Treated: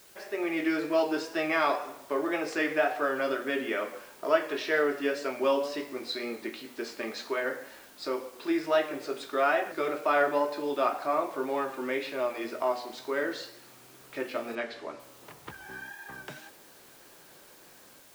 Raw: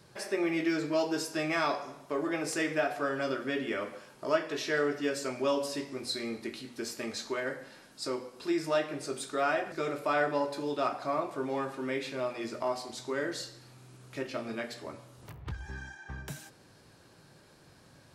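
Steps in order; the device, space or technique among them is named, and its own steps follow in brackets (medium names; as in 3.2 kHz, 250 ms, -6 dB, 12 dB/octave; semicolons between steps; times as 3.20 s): dictaphone (band-pass 310–3600 Hz; level rider gain up to 6.5 dB; wow and flutter; white noise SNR 25 dB); 14.55–15.00 s: low-pass 6 kHz 12 dB/octave; trim -2.5 dB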